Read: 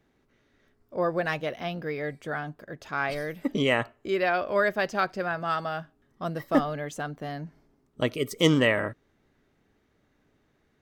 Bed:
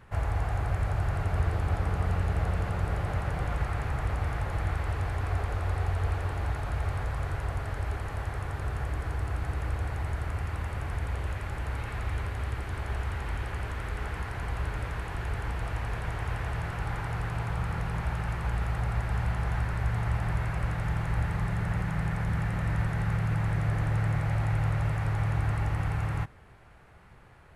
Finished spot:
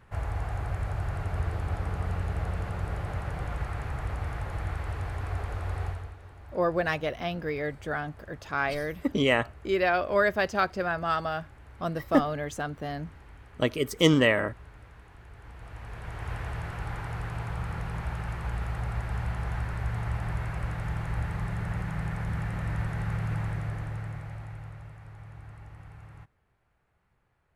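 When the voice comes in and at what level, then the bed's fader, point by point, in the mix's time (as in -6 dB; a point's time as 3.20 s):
5.60 s, +0.5 dB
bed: 5.87 s -3 dB
6.16 s -17 dB
15.31 s -17 dB
16.32 s -2.5 dB
23.38 s -2.5 dB
24.97 s -18 dB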